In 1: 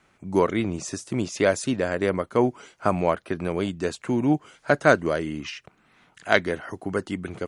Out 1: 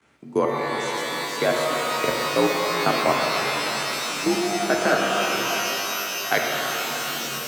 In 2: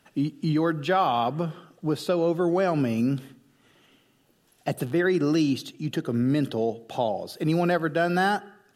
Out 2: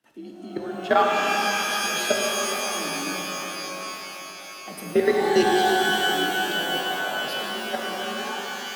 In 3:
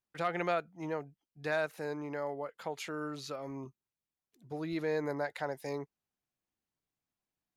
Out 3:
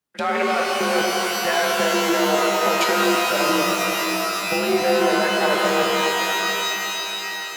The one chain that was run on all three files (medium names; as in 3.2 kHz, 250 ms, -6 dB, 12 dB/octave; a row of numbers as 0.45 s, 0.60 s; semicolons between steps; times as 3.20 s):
level held to a coarse grid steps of 21 dB; frequency shift +50 Hz; pitch-shifted reverb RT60 4 s, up +12 st, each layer -2 dB, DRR -1 dB; peak normalisation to -6 dBFS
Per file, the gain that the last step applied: +1.0 dB, +4.5 dB, +19.0 dB